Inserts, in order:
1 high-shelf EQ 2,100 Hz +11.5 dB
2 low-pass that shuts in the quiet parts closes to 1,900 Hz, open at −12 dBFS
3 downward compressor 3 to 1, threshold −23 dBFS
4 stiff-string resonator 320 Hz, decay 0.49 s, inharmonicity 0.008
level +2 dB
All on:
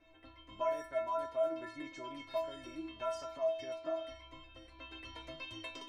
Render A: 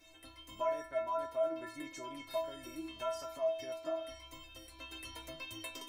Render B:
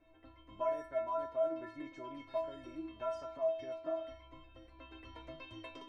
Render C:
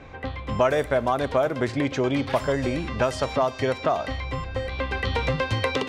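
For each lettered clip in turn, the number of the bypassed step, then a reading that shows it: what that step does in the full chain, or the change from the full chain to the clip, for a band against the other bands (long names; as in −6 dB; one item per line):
2, 4 kHz band +2.0 dB
1, 4 kHz band −8.0 dB
4, 125 Hz band +16.5 dB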